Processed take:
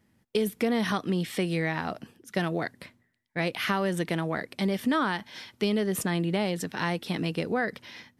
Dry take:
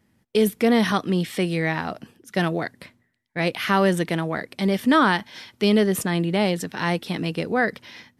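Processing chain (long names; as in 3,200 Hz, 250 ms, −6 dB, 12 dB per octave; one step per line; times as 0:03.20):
downward compressor, threshold −20 dBFS, peak gain reduction 7 dB
level −2.5 dB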